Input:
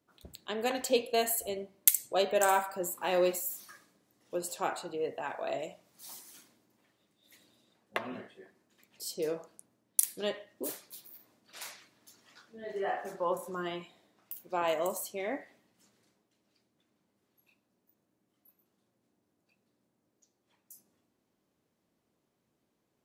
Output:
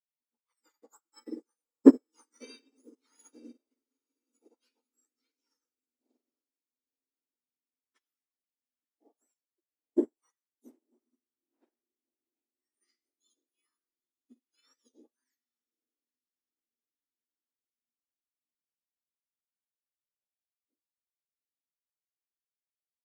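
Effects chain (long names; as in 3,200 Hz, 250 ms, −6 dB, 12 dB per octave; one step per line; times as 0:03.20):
frequency axis turned over on the octave scale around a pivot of 1,900 Hz
on a send: feedback delay with all-pass diffusion 889 ms, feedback 62%, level −16 dB
on the sum: expander for the loud parts 2.5 to 1, over −44 dBFS
level +1.5 dB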